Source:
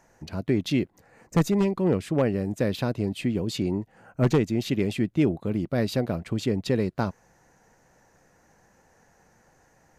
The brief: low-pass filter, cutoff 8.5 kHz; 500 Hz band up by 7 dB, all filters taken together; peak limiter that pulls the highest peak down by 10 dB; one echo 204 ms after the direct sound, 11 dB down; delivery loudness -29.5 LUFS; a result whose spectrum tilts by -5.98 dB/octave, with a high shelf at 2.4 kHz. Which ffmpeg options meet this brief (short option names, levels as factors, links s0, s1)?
-af "lowpass=8500,equalizer=f=500:t=o:g=8.5,highshelf=f=2400:g=5,alimiter=limit=0.158:level=0:latency=1,aecho=1:1:204:0.282,volume=0.708"